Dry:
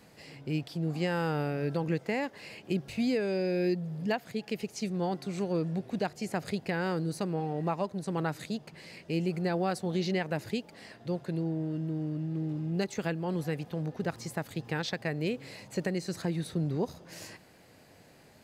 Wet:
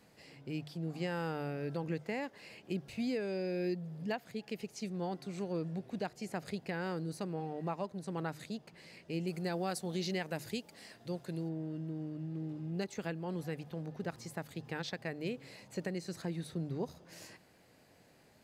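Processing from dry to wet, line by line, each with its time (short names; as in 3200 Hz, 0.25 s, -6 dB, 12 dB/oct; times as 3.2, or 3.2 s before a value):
9.27–11.49 high shelf 4700 Hz +11 dB
whole clip: notches 50/100/150 Hz; gain -6.5 dB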